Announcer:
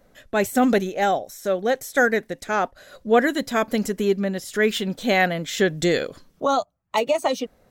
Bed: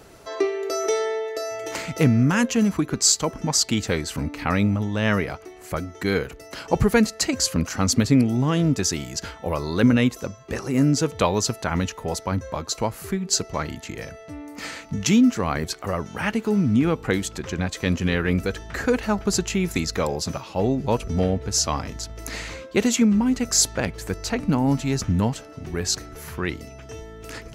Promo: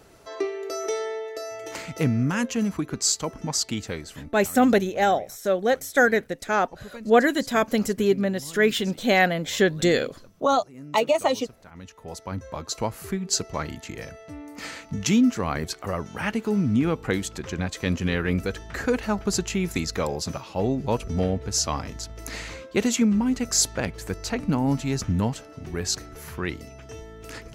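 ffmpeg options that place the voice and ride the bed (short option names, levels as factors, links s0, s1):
-filter_complex "[0:a]adelay=4000,volume=1[s0];[1:a]volume=5.96,afade=t=out:st=3.59:d=0.91:silence=0.125893,afade=t=in:st=11.73:d=1.12:silence=0.0944061[s1];[s0][s1]amix=inputs=2:normalize=0"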